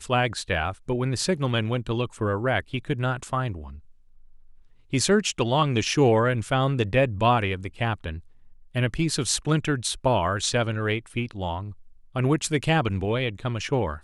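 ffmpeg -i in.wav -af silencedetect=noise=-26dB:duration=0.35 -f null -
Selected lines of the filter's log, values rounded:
silence_start: 3.52
silence_end: 4.93 | silence_duration: 1.42
silence_start: 8.12
silence_end: 8.76 | silence_duration: 0.64
silence_start: 11.60
silence_end: 12.16 | silence_duration: 0.56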